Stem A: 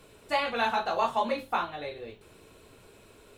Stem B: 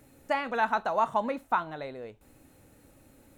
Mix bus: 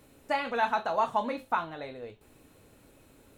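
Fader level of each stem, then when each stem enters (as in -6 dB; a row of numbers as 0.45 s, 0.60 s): -8.5 dB, -2.0 dB; 0.00 s, 0.00 s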